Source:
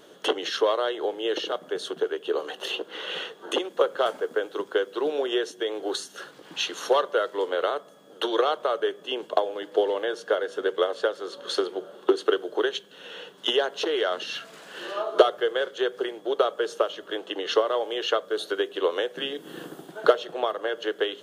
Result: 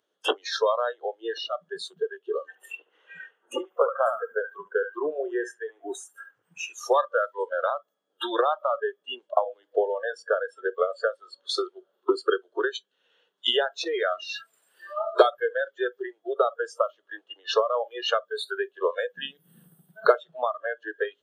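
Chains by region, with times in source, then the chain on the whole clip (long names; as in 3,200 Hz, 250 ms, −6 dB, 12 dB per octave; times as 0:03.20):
0:02.48–0:06.73: parametric band 4,100 Hz −12.5 dB 0.72 octaves + feedback echo with a band-pass in the loop 72 ms, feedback 45%, band-pass 1,300 Hz, level −4.5 dB
whole clip: parametric band 110 Hz +6 dB 2.6 octaves; noise reduction from a noise print of the clip's start 28 dB; meter weighting curve A; level +1.5 dB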